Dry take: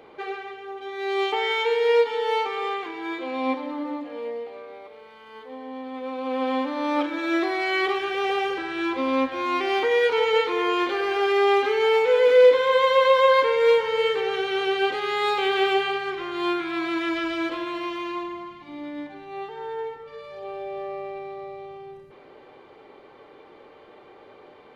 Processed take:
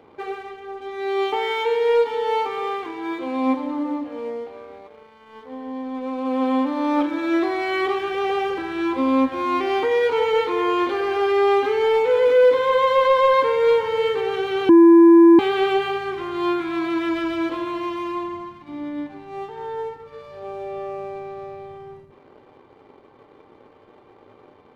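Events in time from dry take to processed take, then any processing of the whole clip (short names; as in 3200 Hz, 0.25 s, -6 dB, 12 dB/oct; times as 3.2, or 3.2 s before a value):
14.69–15.39 bleep 336 Hz -7.5 dBFS
whole clip: low shelf 470 Hz +7.5 dB; sample leveller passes 1; fifteen-band EQ 100 Hz +7 dB, 250 Hz +4 dB, 1000 Hz +5 dB; gain -6.5 dB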